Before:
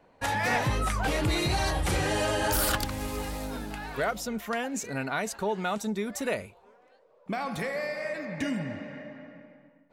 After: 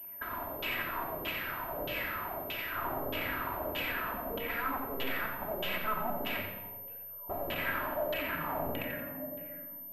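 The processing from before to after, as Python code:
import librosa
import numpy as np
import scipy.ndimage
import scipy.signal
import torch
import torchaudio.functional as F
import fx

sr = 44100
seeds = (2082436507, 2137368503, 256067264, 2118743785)

y = fx.band_shelf(x, sr, hz=750.0, db=10.5, octaves=3.0, at=(3.33, 3.92))
y = (np.mod(10.0 ** (30.0 / 20.0) * y + 1.0, 2.0) - 1.0) / 10.0 ** (30.0 / 20.0)
y = fx.filter_lfo_lowpass(y, sr, shape='saw_down', hz=1.6, low_hz=440.0, high_hz=3100.0, q=5.0)
y = fx.echo_feedback(y, sr, ms=88, feedback_pct=35, wet_db=-8)
y = fx.room_shoebox(y, sr, seeds[0], volume_m3=3400.0, walls='furnished', distance_m=2.9)
y = fx.pwm(y, sr, carrier_hz=13000.0)
y = F.gain(torch.from_numpy(y), -6.5).numpy()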